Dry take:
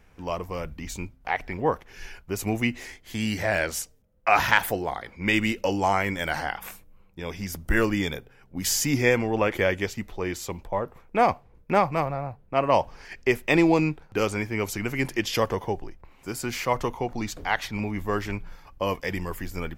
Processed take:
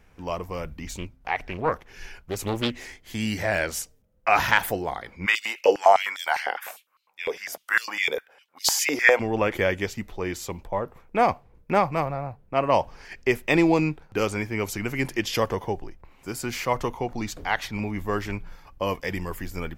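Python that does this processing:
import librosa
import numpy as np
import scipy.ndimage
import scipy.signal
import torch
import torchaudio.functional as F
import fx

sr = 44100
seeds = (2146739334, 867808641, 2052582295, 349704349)

y = fx.doppler_dist(x, sr, depth_ms=0.69, at=(0.87, 3.02))
y = fx.filter_held_highpass(y, sr, hz=9.9, low_hz=460.0, high_hz=4300.0, at=(5.25, 9.19), fade=0.02)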